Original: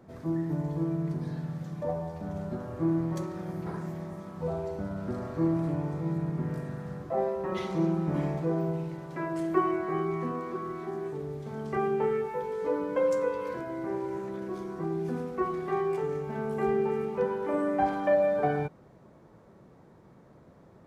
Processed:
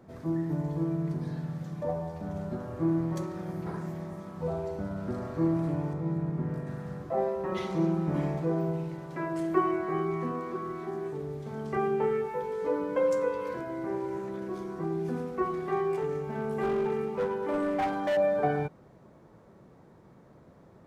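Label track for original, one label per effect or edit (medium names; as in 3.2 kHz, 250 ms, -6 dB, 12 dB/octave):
5.930000	6.670000	treble shelf 2.3 kHz -7.5 dB
15.940000	18.170000	hard clipper -24.5 dBFS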